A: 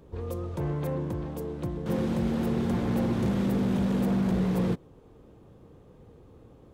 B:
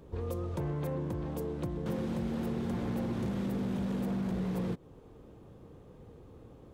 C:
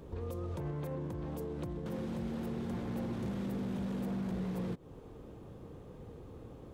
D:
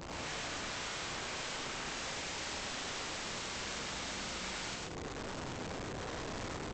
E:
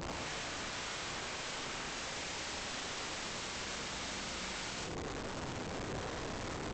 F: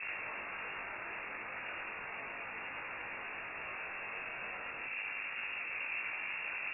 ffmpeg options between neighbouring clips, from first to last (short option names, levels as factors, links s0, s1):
-af "acompressor=threshold=0.0282:ratio=6"
-af "alimiter=level_in=3.35:limit=0.0631:level=0:latency=1:release=184,volume=0.299,volume=1.41"
-af "aresample=16000,aeval=exprs='(mod(178*val(0)+1,2)-1)/178':c=same,aresample=44100,aecho=1:1:102|134.1|201.2:0.891|0.708|0.316,volume=1.88"
-af "alimiter=level_in=5.01:limit=0.0631:level=0:latency=1:release=20,volume=0.2,volume=1.78"
-af "flanger=delay=18.5:depth=2.1:speed=0.35,lowpass=f=2400:t=q:w=0.5098,lowpass=f=2400:t=q:w=0.6013,lowpass=f=2400:t=q:w=0.9,lowpass=f=2400:t=q:w=2.563,afreqshift=-2800,aemphasis=mode=production:type=50fm,volume=1.33"